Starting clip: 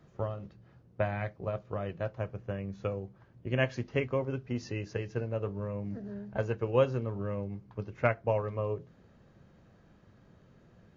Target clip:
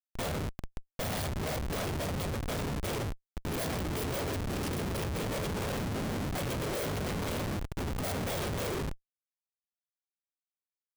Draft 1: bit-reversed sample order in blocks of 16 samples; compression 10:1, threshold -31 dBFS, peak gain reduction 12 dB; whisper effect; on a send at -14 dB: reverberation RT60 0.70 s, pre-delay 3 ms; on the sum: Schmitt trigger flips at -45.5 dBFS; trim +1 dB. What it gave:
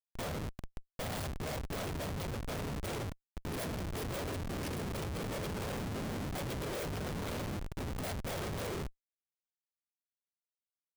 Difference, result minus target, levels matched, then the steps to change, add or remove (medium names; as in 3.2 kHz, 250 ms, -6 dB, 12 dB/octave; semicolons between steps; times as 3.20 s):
compression: peak gain reduction +12 dB
remove: compression 10:1, threshold -31 dBFS, peak gain reduction 12 dB